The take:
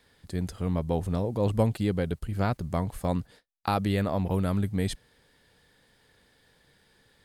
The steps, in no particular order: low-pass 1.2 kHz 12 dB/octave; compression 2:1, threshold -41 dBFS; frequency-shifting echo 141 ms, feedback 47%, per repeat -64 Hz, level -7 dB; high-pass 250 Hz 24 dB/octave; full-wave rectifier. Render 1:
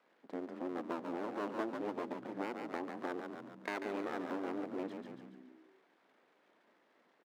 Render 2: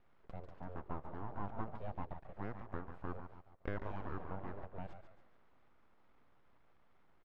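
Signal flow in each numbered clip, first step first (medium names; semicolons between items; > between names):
low-pass > full-wave rectifier > frequency-shifting echo > high-pass > compression; compression > frequency-shifting echo > high-pass > full-wave rectifier > low-pass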